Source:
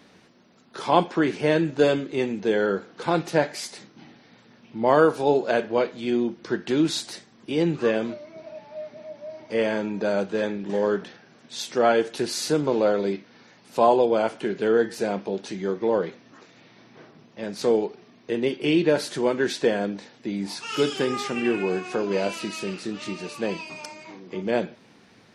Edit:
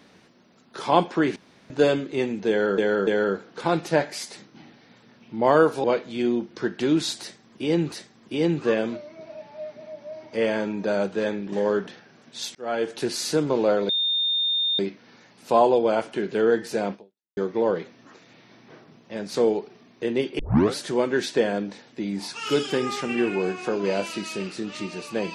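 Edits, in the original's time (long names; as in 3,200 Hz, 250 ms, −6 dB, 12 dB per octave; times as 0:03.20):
0:01.36–0:01.70: fill with room tone
0:02.49–0:02.78: repeat, 3 plays
0:05.26–0:05.72: remove
0:07.09–0:07.80: repeat, 2 plays
0:11.72–0:12.15: fade in
0:13.06: insert tone 3,640 Hz −20.5 dBFS 0.90 s
0:15.21–0:15.64: fade out exponential
0:18.66: tape start 0.37 s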